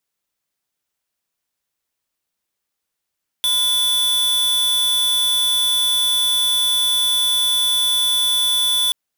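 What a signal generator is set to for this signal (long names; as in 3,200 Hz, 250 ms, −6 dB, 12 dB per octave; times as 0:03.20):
tone square 3,470 Hz −17.5 dBFS 5.48 s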